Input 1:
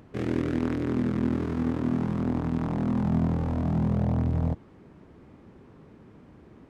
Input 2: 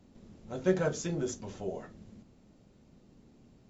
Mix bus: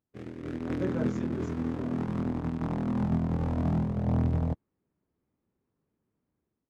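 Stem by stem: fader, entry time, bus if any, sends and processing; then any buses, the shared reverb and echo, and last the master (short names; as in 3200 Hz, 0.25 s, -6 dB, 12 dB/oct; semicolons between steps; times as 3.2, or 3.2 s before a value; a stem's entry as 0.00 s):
-5.0 dB, 0.00 s, no send, limiter -20.5 dBFS, peak gain reduction 5.5 dB; upward expander 2.5:1, over -47 dBFS
-13.0 dB, 0.15 s, no send, LPF 1500 Hz 6 dB/oct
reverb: off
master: AGC gain up to 8 dB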